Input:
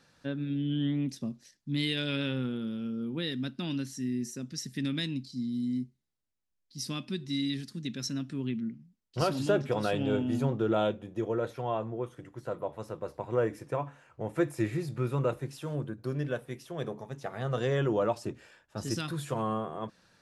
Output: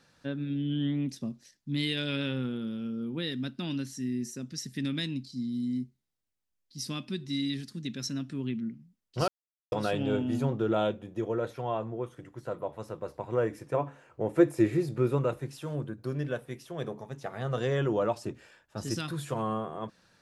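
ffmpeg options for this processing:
-filter_complex "[0:a]asettb=1/sr,asplit=3[a][b][c];[a]atrim=end=13.744[d];[b]atrim=start=13.74:end=15.18,asetpts=PTS-STARTPTS,afade=t=in:d=0.004:c=qsin,afade=t=out:st=1.436:d=0.004:c=qsin,equalizer=f=390:w=0.94:g=7.5[e];[c]atrim=start=15.176[f];[d][e]acrossfade=d=0.004:c1=hsin:c2=qsin[g];[g][f]acrossfade=d=0.004:c1=qsin:c2=hsin,asplit=3[h][i][j];[h]atrim=end=9.28,asetpts=PTS-STARTPTS,afade=t=out:st=9.276:d=0.004:c=hsin[k];[i]atrim=start=9.28:end=9.72,asetpts=PTS-STARTPTS,volume=0[l];[j]atrim=start=9.72,asetpts=PTS-STARTPTS,afade=t=in:d=0.004:c=hsin[m];[k][l][m]concat=n=3:v=0:a=1"

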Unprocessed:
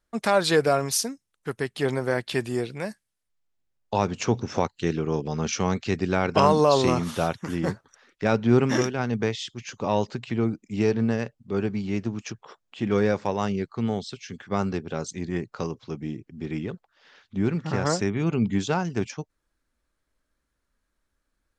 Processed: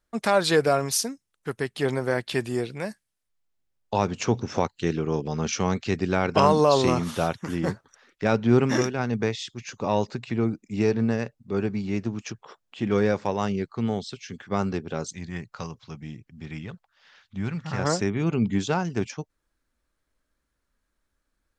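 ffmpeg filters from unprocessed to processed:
-filter_complex "[0:a]asettb=1/sr,asplit=3[a][b][c];[a]atrim=end=8.654[d];[b]atrim=start=8.65:end=12.05,asetpts=PTS-STARTPTS,afade=t=in:d=0.004:c=qsin,afade=t=out:st=3.396:d=0.004:c=qsin,bandreject=f=3.1k:w=12[e];[c]atrim=start=12.046[f];[d][e]acrossfade=d=0.004:c1=hsin:c2=qsin[g];[g][f]acrossfade=d=0.004:c1=qsin:c2=hsin,asettb=1/sr,asplit=3[h][i][j];[h]atrim=end=15.144[k];[i]atrim=start=15.14:end=17.79,asetpts=PTS-STARTPTS,afade=t=in:d=0.004:c=qsin,afade=t=out:st=2.646:d=0.004:c=qsin,equalizer=f=350:w=1.1:g=-12.5[l];[j]atrim=start=17.786[m];[k][l]acrossfade=d=0.004:c1=hsin:c2=qsin[n];[n][m]acrossfade=d=0.004:c1=qsin:c2=hsin"

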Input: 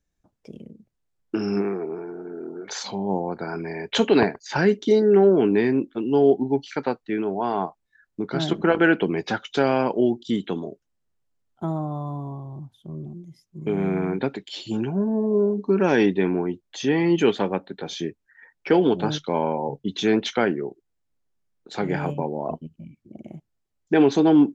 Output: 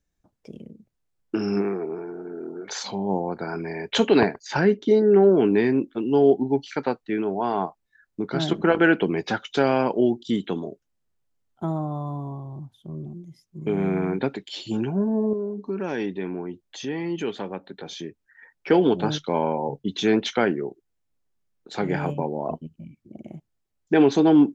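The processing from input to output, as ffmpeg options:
-filter_complex "[0:a]asettb=1/sr,asplit=3[a][b][c];[a]atrim=end=4.594[d];[b]atrim=start=4.59:end=5.29,asetpts=PTS-STARTPTS,afade=t=in:d=0.004:c=qsin,afade=t=out:st=0.696:d=0.004:c=qsin,lowpass=f=2.3k:p=1[e];[c]atrim=start=5.286[f];[d][e]acrossfade=d=0.004:c1=hsin:c2=qsin[g];[g][f]acrossfade=d=0.004:c1=qsin:c2=hsin,asettb=1/sr,asplit=3[h][i][j];[h]atrim=end=15.334[k];[i]atrim=start=15.33:end=18.68,asetpts=PTS-STARTPTS,afade=t=in:d=0.004:c=qsin,afade=t=out:st=3.346:d=0.004:c=qsin,acompressor=threshold=-40dB:ratio=1.5:attack=3.2:release=140:knee=1:detection=peak[l];[j]atrim=start=18.676[m];[k][l]acrossfade=d=0.004:c1=hsin:c2=qsin[n];[n][m]acrossfade=d=0.004:c1=qsin:c2=hsin"

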